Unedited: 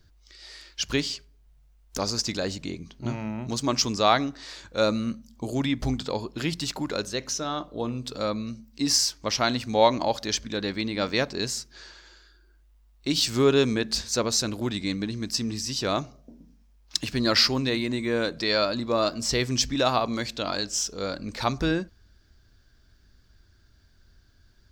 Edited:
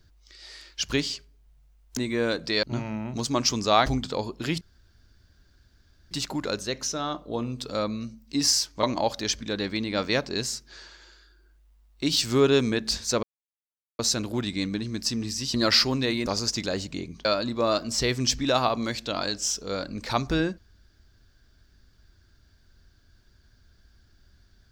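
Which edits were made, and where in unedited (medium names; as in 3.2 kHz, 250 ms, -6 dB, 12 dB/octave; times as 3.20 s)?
1.97–2.96 s: swap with 17.90–18.56 s
4.19–5.82 s: delete
6.57 s: insert room tone 1.50 s
9.29–9.87 s: delete
14.27 s: insert silence 0.76 s
15.82–17.18 s: delete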